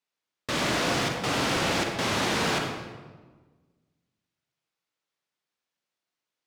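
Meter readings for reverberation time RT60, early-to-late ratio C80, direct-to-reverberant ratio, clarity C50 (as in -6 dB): 1.4 s, 5.0 dB, 2.5 dB, 3.5 dB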